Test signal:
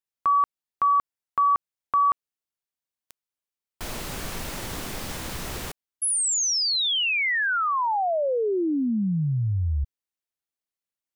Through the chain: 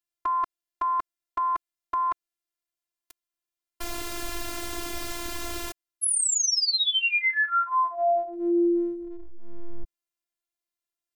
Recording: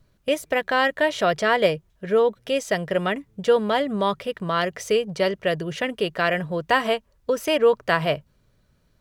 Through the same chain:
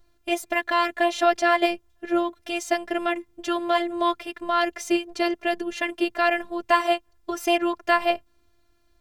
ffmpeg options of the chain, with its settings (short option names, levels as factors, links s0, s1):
-af "afftfilt=real='hypot(re,im)*cos(PI*b)':imag='0':win_size=512:overlap=0.75,volume=1.5"